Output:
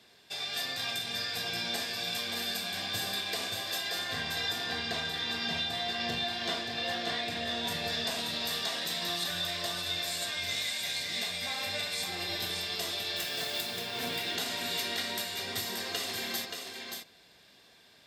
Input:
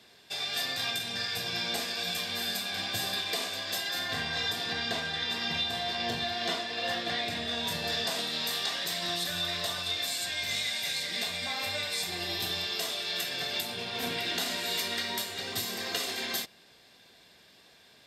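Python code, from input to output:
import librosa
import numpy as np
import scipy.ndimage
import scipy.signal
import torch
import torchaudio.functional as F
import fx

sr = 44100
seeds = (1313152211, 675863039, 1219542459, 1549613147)

p1 = fx.mod_noise(x, sr, seeds[0], snr_db=11, at=(13.16, 13.78))
p2 = p1 + fx.echo_single(p1, sr, ms=578, db=-5.5, dry=0)
y = p2 * librosa.db_to_amplitude(-2.5)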